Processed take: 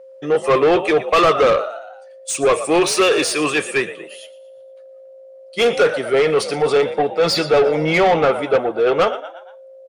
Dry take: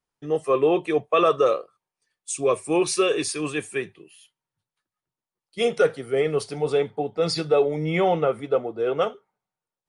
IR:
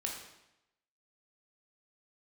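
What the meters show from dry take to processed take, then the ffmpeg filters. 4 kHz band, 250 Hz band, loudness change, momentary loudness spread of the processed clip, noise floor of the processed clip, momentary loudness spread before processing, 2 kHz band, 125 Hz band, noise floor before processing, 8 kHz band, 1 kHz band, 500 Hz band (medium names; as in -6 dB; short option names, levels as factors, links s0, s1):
+9.5 dB, +5.5 dB, +7.0 dB, 13 LU, -42 dBFS, 8 LU, +11.0 dB, +3.0 dB, under -85 dBFS, +6.5 dB, +8.0 dB, +6.5 dB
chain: -filter_complex "[0:a]aeval=exprs='val(0)+0.00282*sin(2*PI*530*n/s)':c=same,asplit=5[s0][s1][s2][s3][s4];[s1]adelay=117,afreqshift=56,volume=0.126[s5];[s2]adelay=234,afreqshift=112,volume=0.0569[s6];[s3]adelay=351,afreqshift=168,volume=0.0254[s7];[s4]adelay=468,afreqshift=224,volume=0.0115[s8];[s0][s5][s6][s7][s8]amix=inputs=5:normalize=0,asplit=2[s9][s10];[s10]highpass=f=720:p=1,volume=10,asoftclip=type=tanh:threshold=0.376[s11];[s9][s11]amix=inputs=2:normalize=0,lowpass=f=3800:p=1,volume=0.501,volume=1.26"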